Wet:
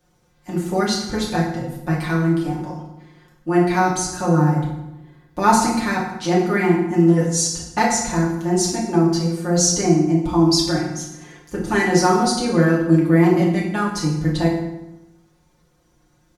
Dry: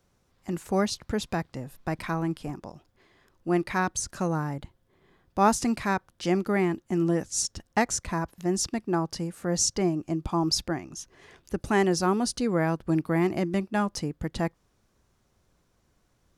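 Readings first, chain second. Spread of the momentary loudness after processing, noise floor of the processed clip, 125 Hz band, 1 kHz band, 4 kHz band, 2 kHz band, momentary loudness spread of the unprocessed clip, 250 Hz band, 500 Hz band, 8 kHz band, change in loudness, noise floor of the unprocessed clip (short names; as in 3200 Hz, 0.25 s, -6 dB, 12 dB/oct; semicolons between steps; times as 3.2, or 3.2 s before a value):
12 LU, -60 dBFS, +11.5 dB, +8.5 dB, +8.5 dB, +8.5 dB, 12 LU, +9.5 dB, +8.0 dB, +8.0 dB, +9.0 dB, -70 dBFS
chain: comb 5.6 ms, depth 81%; dynamic EQ 4200 Hz, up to +6 dB, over -52 dBFS, Q 5.2; FDN reverb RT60 0.93 s, low-frequency decay 1.3×, high-frequency decay 0.75×, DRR -4 dB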